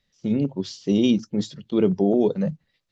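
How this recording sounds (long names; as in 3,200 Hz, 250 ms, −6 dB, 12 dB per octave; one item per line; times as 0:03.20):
background noise floor −74 dBFS
spectral slope −7.0 dB per octave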